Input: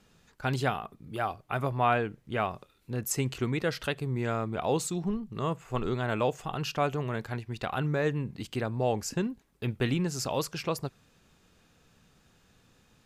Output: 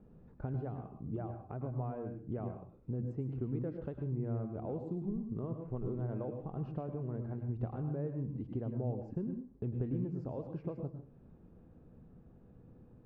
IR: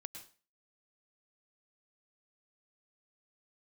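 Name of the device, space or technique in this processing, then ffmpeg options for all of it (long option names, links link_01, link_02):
television next door: -filter_complex "[0:a]acompressor=threshold=-43dB:ratio=4,lowpass=480[link_01];[1:a]atrim=start_sample=2205[link_02];[link_01][link_02]afir=irnorm=-1:irlink=0,volume=11.5dB"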